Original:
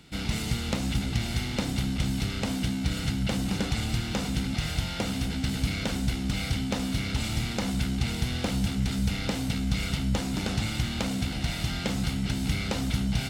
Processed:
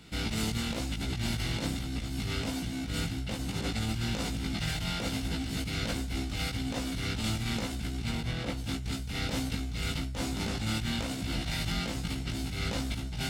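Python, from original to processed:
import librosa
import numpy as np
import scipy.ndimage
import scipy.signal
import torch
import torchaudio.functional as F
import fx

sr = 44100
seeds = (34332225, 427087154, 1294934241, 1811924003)

y = fx.high_shelf(x, sr, hz=4100.0, db=-9.5, at=(8.09, 8.57))
y = fx.over_compress(y, sr, threshold_db=-31.0, ratio=-1.0)
y = fx.doubler(y, sr, ms=18.0, db=-2)
y = y * librosa.db_to_amplitude(-3.5)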